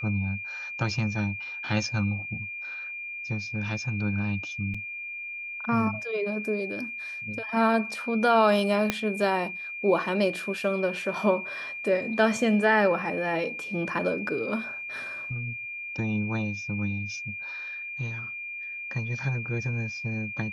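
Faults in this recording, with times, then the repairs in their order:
whistle 2,400 Hz −34 dBFS
0:04.74: drop-out 4.9 ms
0:08.90: click −9 dBFS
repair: click removal
notch filter 2,400 Hz, Q 30
repair the gap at 0:04.74, 4.9 ms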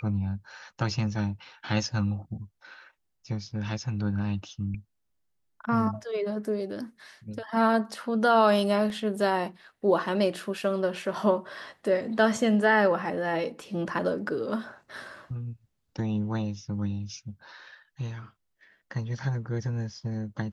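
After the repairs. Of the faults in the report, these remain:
0:08.90: click

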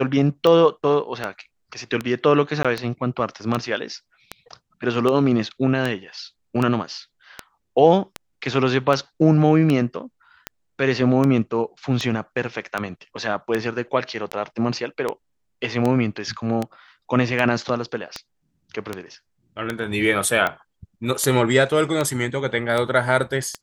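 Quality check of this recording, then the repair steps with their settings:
scratch tick 78 rpm −10 dBFS
0:02.63–0:02.65: drop-out 16 ms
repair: click removal
repair the gap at 0:02.63, 16 ms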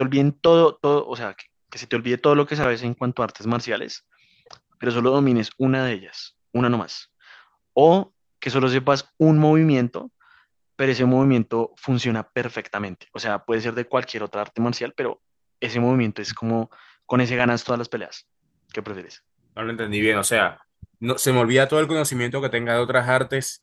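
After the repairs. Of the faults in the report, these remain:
none of them is left

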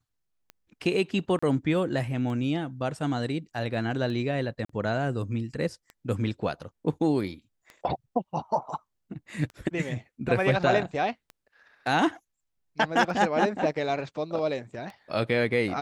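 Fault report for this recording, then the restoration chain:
scratch tick 33 1/3 rpm −27 dBFS
0:01.39–0:01.43: drop-out 35 ms
0:04.65–0:04.69: drop-out 44 ms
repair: click removal
repair the gap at 0:01.39, 35 ms
repair the gap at 0:04.65, 44 ms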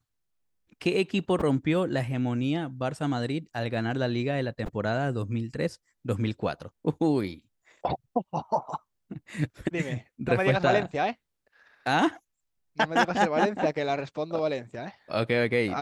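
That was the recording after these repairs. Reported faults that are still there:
none of them is left

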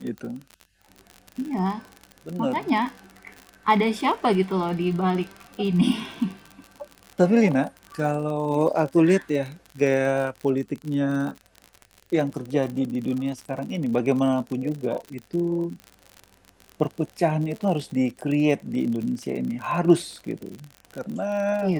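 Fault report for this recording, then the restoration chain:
surface crackle 55 per second −30 dBFS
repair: click removal

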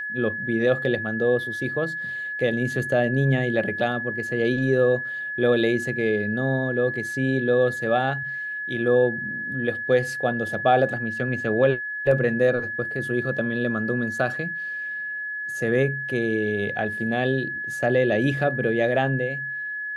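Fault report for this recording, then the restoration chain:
whistle 1,700 Hz −28 dBFS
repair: notch filter 1,700 Hz, Q 30

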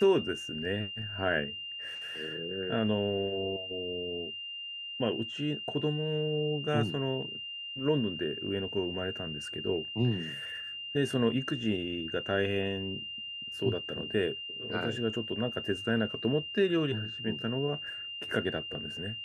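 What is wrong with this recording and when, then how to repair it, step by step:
whistle 2,800 Hz −38 dBFS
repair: notch filter 2,800 Hz, Q 30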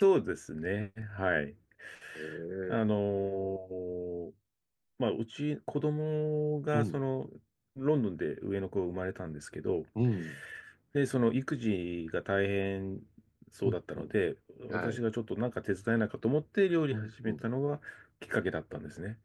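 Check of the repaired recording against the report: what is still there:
none of them is left

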